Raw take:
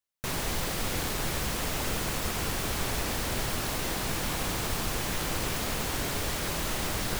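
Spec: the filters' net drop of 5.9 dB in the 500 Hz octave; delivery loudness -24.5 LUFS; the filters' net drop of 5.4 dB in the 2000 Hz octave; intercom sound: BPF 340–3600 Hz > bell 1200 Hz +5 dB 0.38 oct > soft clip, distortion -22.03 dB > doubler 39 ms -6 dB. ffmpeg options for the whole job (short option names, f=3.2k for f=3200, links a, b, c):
-filter_complex "[0:a]highpass=340,lowpass=3.6k,equalizer=f=500:t=o:g=-6,equalizer=f=1.2k:t=o:w=0.38:g=5,equalizer=f=2k:t=o:g=-7,asoftclip=threshold=-29.5dB,asplit=2[a][b];[b]adelay=39,volume=-6dB[c];[a][c]amix=inputs=2:normalize=0,volume=13dB"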